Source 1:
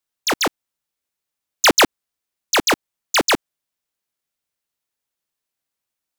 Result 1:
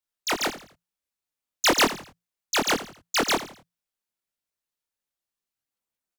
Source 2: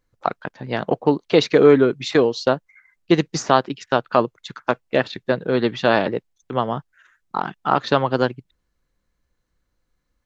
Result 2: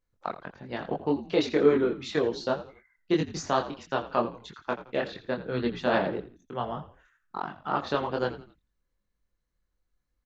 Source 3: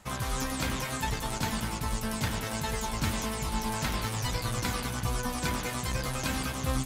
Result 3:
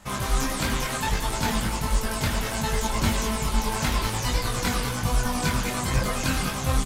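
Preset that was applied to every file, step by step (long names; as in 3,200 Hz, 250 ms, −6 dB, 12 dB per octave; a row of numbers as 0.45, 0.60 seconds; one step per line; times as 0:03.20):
multi-voice chorus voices 6, 1.4 Hz, delay 23 ms, depth 3 ms
echo with shifted repeats 84 ms, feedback 35%, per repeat −58 Hz, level −14 dB
normalise the peak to −9 dBFS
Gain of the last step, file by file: −3.5, −7.0, +8.5 decibels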